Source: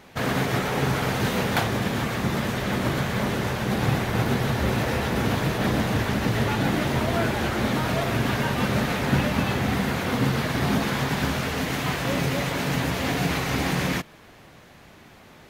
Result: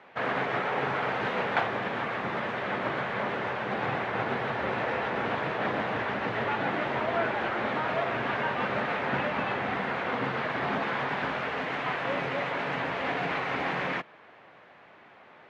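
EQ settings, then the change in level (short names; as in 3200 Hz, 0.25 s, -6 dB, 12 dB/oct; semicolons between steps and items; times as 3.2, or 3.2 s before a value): BPF 120–7800 Hz; three-band isolator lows -13 dB, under 440 Hz, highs -22 dB, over 3000 Hz; high shelf 5600 Hz -5.5 dB; 0.0 dB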